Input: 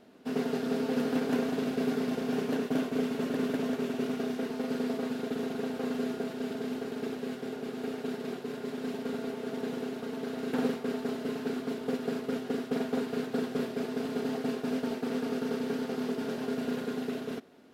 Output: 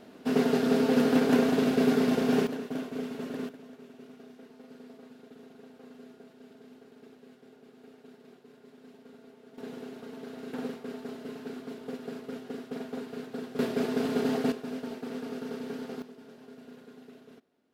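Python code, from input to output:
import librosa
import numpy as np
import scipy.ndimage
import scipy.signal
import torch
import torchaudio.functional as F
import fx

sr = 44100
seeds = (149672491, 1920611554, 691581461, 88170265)

y = fx.gain(x, sr, db=fx.steps((0.0, 6.0), (2.47, -5.0), (3.49, -17.5), (9.58, -6.5), (13.59, 4.5), (14.52, -5.0), (16.02, -16.5)))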